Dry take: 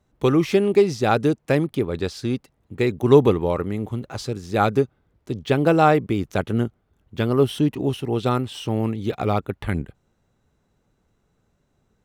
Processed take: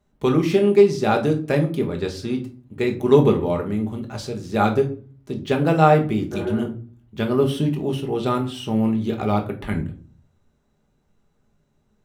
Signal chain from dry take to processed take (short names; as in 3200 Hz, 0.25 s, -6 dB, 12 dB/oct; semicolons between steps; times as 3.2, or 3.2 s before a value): spectral repair 6.35–6.59, 290–2300 Hz after; shoebox room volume 290 m³, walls furnished, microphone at 1.3 m; gain -2.5 dB